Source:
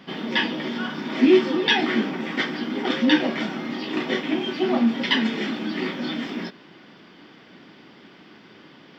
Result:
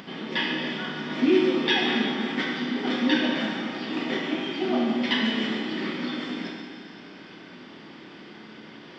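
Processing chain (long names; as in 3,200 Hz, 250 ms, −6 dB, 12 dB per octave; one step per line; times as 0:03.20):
downsampling to 22,050 Hz
four-comb reverb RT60 2.2 s, combs from 25 ms, DRR −0.5 dB
upward compression, threshold −31 dBFS
level −5.5 dB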